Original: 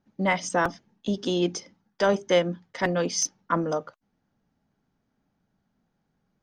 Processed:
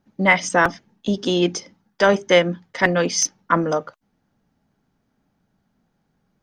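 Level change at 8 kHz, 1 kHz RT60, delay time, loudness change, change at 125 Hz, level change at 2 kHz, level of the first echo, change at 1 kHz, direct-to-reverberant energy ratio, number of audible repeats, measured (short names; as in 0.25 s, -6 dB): +6.0 dB, none, none, +7.0 dB, +5.5 dB, +10.5 dB, none, +6.5 dB, none, none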